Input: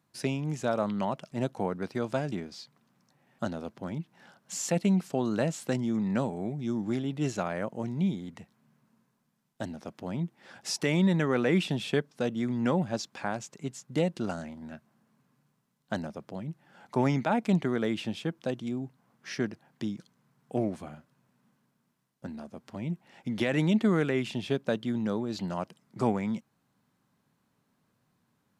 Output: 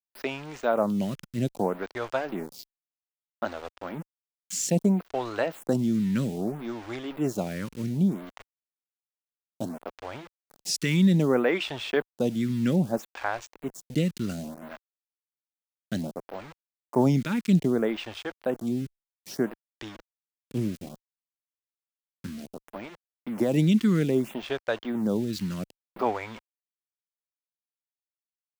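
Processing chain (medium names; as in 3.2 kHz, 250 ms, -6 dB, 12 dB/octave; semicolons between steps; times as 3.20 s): small samples zeroed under -41.5 dBFS; lamp-driven phase shifter 0.62 Hz; trim +5.5 dB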